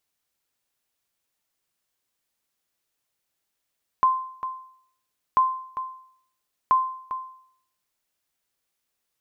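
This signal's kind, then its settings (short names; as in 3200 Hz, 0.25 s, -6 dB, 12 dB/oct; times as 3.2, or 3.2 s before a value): sonar ping 1040 Hz, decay 0.62 s, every 1.34 s, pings 3, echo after 0.40 s, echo -12 dB -12 dBFS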